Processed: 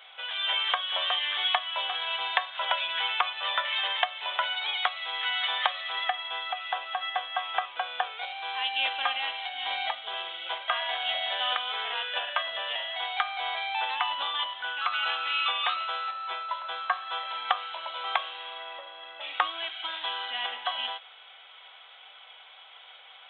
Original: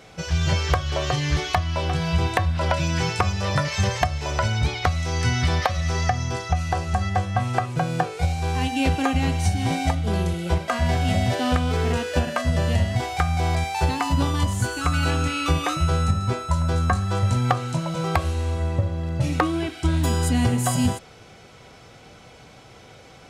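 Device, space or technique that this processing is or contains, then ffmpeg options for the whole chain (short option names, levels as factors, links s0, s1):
musical greeting card: -af "aresample=8000,aresample=44100,highpass=f=790:w=0.5412,highpass=f=790:w=1.3066,equalizer=f=3300:t=o:w=0.39:g=11.5,volume=0.794"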